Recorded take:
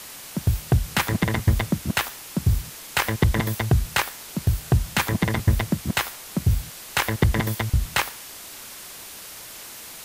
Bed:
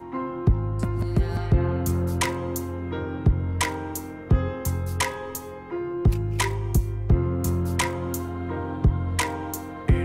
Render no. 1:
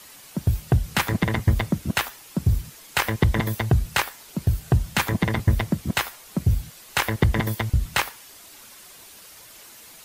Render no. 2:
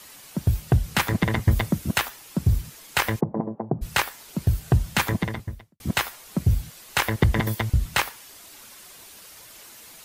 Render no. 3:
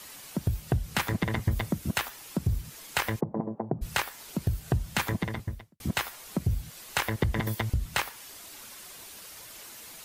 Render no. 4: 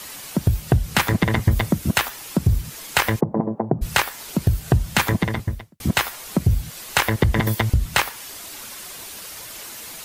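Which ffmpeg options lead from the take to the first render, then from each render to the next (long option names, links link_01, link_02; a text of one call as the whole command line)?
ffmpeg -i in.wav -af "afftdn=noise_reduction=8:noise_floor=-40" out.wav
ffmpeg -i in.wav -filter_complex "[0:a]asettb=1/sr,asplit=3[link_01][link_02][link_03];[link_01]atrim=end=1.514[link_04];[link_02]atrim=start=1.51:end=1.98,asetpts=PTS-STARTPTS,afade=type=in:duration=0.004:curve=qsin,afade=type=out:start_time=0.466:duration=0.004:curve=qsin,highshelf=frequency=8200:gain=5.5[link_05];[link_03]atrim=start=1.976[link_06];[link_04][link_05]acrossfade=duration=0.004:curve1=hsin:curve2=qsin[link_07];[link_07][link_06]acrossfade=duration=0.004:curve1=qsin:curve2=hsin,asplit=3[link_08][link_09][link_10];[link_08]afade=type=out:start_time=3.19:duration=0.02[link_11];[link_09]asuperpass=centerf=380:order=8:qfactor=0.5,afade=type=in:start_time=3.19:duration=0.02,afade=type=out:start_time=3.81:duration=0.02[link_12];[link_10]afade=type=in:start_time=3.81:duration=0.02[link_13];[link_11][link_12][link_13]amix=inputs=3:normalize=0,asplit=2[link_14][link_15];[link_14]atrim=end=5.8,asetpts=PTS-STARTPTS,afade=type=out:start_time=5.1:duration=0.7:curve=qua[link_16];[link_15]atrim=start=5.8,asetpts=PTS-STARTPTS,afade=type=in:duration=0.004:curve=hsin[link_17];[link_16][link_17]concat=n=2:v=0:a=1" out.wav
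ffmpeg -i in.wav -af "acompressor=threshold=-29dB:ratio=2" out.wav
ffmpeg -i in.wav -af "volume=9.5dB,alimiter=limit=-3dB:level=0:latency=1" out.wav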